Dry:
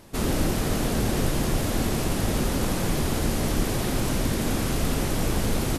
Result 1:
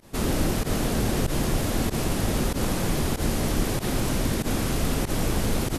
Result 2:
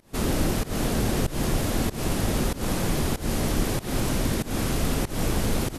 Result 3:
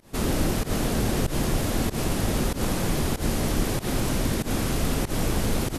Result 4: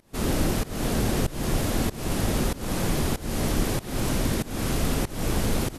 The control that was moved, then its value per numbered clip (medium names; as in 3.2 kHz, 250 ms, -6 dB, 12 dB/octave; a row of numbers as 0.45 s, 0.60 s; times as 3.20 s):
volume shaper, release: 69 ms, 210 ms, 117 ms, 338 ms